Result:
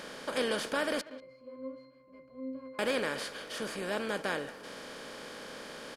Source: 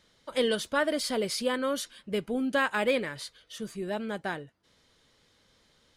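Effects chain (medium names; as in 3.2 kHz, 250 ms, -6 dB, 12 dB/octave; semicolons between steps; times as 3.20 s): spectral levelling over time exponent 0.4; 1.01–2.79 s: pitch-class resonator C, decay 0.5 s; speakerphone echo 190 ms, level -16 dB; trim -8.5 dB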